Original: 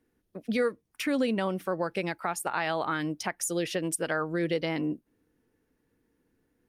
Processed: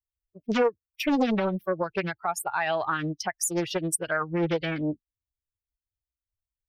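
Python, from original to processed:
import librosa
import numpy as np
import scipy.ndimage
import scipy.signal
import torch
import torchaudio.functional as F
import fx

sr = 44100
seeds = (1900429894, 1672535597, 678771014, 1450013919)

y = fx.bin_expand(x, sr, power=2.0)
y = fx.doppler_dist(y, sr, depth_ms=0.75)
y = y * 10.0 ** (6.5 / 20.0)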